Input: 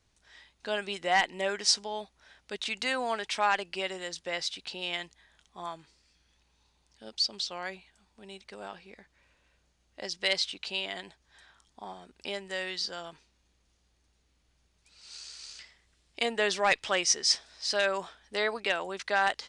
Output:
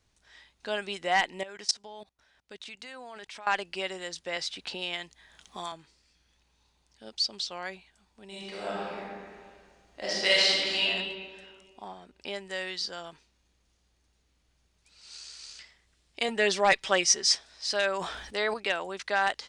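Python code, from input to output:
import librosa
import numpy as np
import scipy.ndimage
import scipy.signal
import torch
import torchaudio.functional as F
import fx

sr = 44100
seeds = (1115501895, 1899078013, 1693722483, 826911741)

y = fx.level_steps(x, sr, step_db=22, at=(1.43, 3.47))
y = fx.band_squash(y, sr, depth_pct=70, at=(4.36, 5.72))
y = fx.reverb_throw(y, sr, start_s=8.27, length_s=2.54, rt60_s=1.9, drr_db=-8.0)
y = fx.high_shelf(y, sr, hz=7900.0, db=-9.5, at=(11.88, 12.36))
y = fx.comb(y, sr, ms=5.2, depth=0.76, at=(16.28, 17.35))
y = fx.sustainer(y, sr, db_per_s=47.0, at=(17.92, 18.54))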